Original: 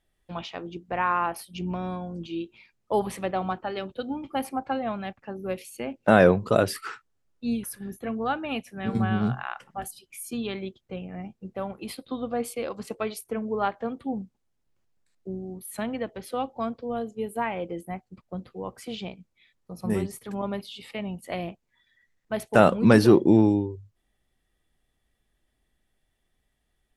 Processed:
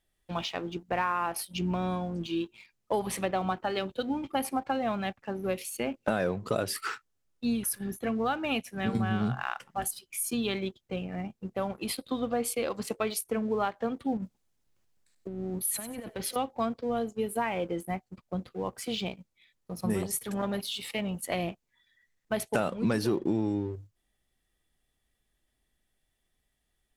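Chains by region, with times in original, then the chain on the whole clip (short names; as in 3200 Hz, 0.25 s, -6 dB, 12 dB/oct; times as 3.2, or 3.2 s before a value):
14.17–16.36 negative-ratio compressor -38 dBFS + thin delay 95 ms, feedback 30%, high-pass 1500 Hz, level -11 dB
20.02–21.26 high shelf 5300 Hz +7 dB + notch 4800 Hz, Q 18 + core saturation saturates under 540 Hz
whole clip: high shelf 3100 Hz +6 dB; compressor 6:1, threshold -26 dBFS; sample leveller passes 1; gain -2.5 dB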